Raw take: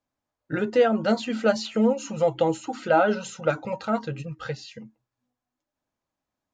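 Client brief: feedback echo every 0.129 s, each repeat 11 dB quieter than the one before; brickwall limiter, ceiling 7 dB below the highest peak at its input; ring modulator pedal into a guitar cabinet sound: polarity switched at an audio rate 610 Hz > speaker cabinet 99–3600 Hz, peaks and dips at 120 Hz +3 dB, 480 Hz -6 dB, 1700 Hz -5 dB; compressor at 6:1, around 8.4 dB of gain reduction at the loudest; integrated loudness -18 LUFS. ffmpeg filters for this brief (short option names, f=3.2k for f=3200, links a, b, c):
-af "acompressor=threshold=-24dB:ratio=6,alimiter=limit=-21.5dB:level=0:latency=1,aecho=1:1:129|258|387:0.282|0.0789|0.0221,aeval=exprs='val(0)*sgn(sin(2*PI*610*n/s))':c=same,highpass=99,equalizer=f=120:t=q:w=4:g=3,equalizer=f=480:t=q:w=4:g=-6,equalizer=f=1.7k:t=q:w=4:g=-5,lowpass=f=3.6k:w=0.5412,lowpass=f=3.6k:w=1.3066,volume=15dB"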